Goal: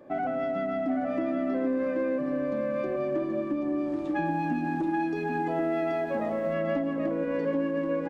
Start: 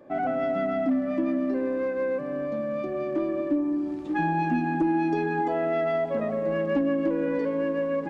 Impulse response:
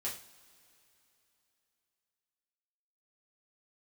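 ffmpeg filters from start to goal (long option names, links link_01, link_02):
-filter_complex "[0:a]acompressor=threshold=-26dB:ratio=6,aecho=1:1:781:0.562,asettb=1/sr,asplit=3[link_01][link_02][link_03];[link_01]atrim=end=4.254[link_04];[link_02]atrim=start=4.25:end=6.54,asetpts=PTS-STARTPTS,afade=type=in:duration=0.004:curve=qsin,afade=type=out:start_time=2.286:duration=0.004:curve=qsin,aeval=exprs='sgn(val(0))*max(abs(val(0))-0.00112,0)':channel_layout=same[link_05];[link_03]atrim=start=6.536[link_06];[link_04][link_05]acrossfade=duration=0.004:curve1=hsin:curve2=qsin[link_07];[link_07][link_06]acrossfade=duration=0.004:curve1=qsin:curve2=hsin"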